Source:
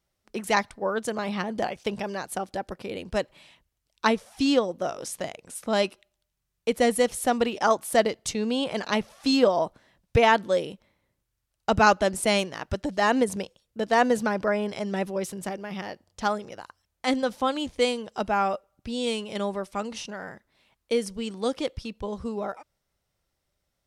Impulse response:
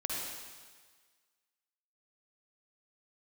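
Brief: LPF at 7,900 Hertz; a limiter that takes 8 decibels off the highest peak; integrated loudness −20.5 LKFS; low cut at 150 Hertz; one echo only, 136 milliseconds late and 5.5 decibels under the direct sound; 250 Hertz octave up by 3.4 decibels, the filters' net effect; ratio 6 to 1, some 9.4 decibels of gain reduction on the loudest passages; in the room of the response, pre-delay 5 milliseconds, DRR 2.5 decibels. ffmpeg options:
-filter_complex "[0:a]highpass=150,lowpass=7900,equalizer=frequency=250:width_type=o:gain=4.5,acompressor=threshold=-24dB:ratio=6,alimiter=limit=-20dB:level=0:latency=1,aecho=1:1:136:0.531,asplit=2[link_01][link_02];[1:a]atrim=start_sample=2205,adelay=5[link_03];[link_02][link_03]afir=irnorm=-1:irlink=0,volume=-6.5dB[link_04];[link_01][link_04]amix=inputs=2:normalize=0,volume=8.5dB"

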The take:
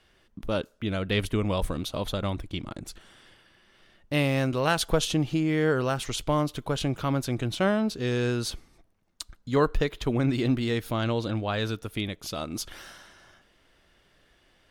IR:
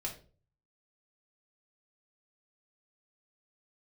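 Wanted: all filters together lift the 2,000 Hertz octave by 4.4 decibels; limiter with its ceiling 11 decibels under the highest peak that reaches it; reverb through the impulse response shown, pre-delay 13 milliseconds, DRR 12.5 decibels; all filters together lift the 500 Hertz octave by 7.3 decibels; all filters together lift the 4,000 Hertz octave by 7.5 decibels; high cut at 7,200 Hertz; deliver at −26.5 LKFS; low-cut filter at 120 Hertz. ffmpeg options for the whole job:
-filter_complex "[0:a]highpass=120,lowpass=7200,equalizer=frequency=500:width_type=o:gain=8.5,equalizer=frequency=2000:width_type=o:gain=3,equalizer=frequency=4000:width_type=o:gain=8.5,alimiter=limit=-15.5dB:level=0:latency=1,asplit=2[link_01][link_02];[1:a]atrim=start_sample=2205,adelay=13[link_03];[link_02][link_03]afir=irnorm=-1:irlink=0,volume=-13dB[link_04];[link_01][link_04]amix=inputs=2:normalize=0,volume=0.5dB"

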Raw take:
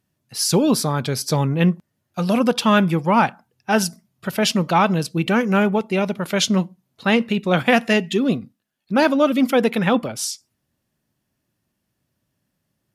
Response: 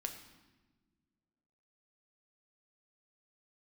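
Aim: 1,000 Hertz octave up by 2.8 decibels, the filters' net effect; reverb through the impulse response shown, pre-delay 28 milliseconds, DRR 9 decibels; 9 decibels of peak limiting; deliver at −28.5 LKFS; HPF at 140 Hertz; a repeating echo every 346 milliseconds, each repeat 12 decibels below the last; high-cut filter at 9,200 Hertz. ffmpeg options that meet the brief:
-filter_complex "[0:a]highpass=140,lowpass=9200,equalizer=frequency=1000:width_type=o:gain=3.5,alimiter=limit=-10dB:level=0:latency=1,aecho=1:1:346|692|1038:0.251|0.0628|0.0157,asplit=2[link_01][link_02];[1:a]atrim=start_sample=2205,adelay=28[link_03];[link_02][link_03]afir=irnorm=-1:irlink=0,volume=-8dB[link_04];[link_01][link_04]amix=inputs=2:normalize=0,volume=-7dB"

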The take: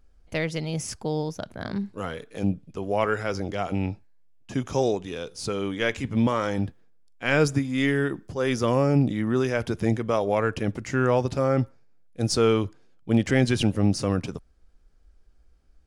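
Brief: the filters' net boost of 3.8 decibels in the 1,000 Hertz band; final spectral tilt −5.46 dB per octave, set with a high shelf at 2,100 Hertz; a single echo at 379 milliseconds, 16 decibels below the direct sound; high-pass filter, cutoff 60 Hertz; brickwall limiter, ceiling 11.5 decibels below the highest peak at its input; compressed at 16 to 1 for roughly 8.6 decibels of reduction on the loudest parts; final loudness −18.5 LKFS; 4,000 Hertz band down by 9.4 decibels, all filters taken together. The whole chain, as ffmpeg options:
ffmpeg -i in.wav -af "highpass=60,equalizer=frequency=1000:width_type=o:gain=7,highshelf=frequency=2100:gain=-6.5,equalizer=frequency=4000:width_type=o:gain=-7,acompressor=threshold=-23dB:ratio=16,alimiter=limit=-24dB:level=0:latency=1,aecho=1:1:379:0.158,volume=17dB" out.wav

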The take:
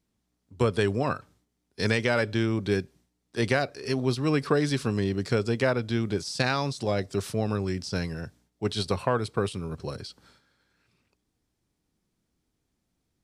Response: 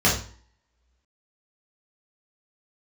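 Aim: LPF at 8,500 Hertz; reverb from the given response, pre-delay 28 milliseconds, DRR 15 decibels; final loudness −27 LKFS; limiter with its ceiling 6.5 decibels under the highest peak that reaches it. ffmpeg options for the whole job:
-filter_complex "[0:a]lowpass=8500,alimiter=limit=-14dB:level=0:latency=1,asplit=2[link_01][link_02];[1:a]atrim=start_sample=2205,adelay=28[link_03];[link_02][link_03]afir=irnorm=-1:irlink=0,volume=-32.5dB[link_04];[link_01][link_04]amix=inputs=2:normalize=0,volume=1.5dB"

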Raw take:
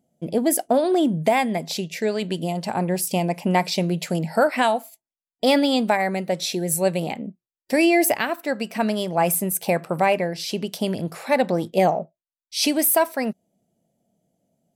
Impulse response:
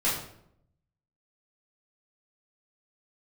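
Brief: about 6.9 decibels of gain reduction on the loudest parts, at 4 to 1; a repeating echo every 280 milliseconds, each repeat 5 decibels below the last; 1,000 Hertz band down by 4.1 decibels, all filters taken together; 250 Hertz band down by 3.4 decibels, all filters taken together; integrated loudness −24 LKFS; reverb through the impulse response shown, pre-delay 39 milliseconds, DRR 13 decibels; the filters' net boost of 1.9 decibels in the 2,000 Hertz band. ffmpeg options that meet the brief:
-filter_complex "[0:a]equalizer=frequency=250:width_type=o:gain=-4.5,equalizer=frequency=1000:width_type=o:gain=-6.5,equalizer=frequency=2000:width_type=o:gain=4,acompressor=threshold=-24dB:ratio=4,aecho=1:1:280|560|840|1120|1400|1680|1960:0.562|0.315|0.176|0.0988|0.0553|0.031|0.0173,asplit=2[link_01][link_02];[1:a]atrim=start_sample=2205,adelay=39[link_03];[link_02][link_03]afir=irnorm=-1:irlink=0,volume=-24dB[link_04];[link_01][link_04]amix=inputs=2:normalize=0,volume=3dB"

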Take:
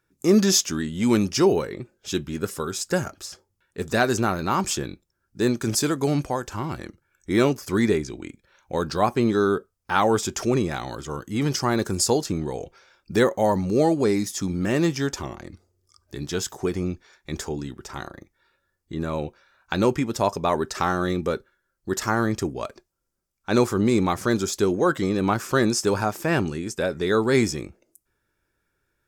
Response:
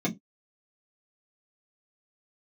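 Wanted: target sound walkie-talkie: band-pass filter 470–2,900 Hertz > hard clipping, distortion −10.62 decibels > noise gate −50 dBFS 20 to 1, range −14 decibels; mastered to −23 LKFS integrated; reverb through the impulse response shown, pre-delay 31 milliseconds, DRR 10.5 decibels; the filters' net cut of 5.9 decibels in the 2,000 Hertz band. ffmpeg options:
-filter_complex "[0:a]equalizer=frequency=2000:width_type=o:gain=-7.5,asplit=2[link_01][link_02];[1:a]atrim=start_sample=2205,adelay=31[link_03];[link_02][link_03]afir=irnorm=-1:irlink=0,volume=-18.5dB[link_04];[link_01][link_04]amix=inputs=2:normalize=0,highpass=470,lowpass=2900,asoftclip=type=hard:threshold=-21.5dB,agate=range=-14dB:threshold=-50dB:ratio=20,volume=7.5dB"

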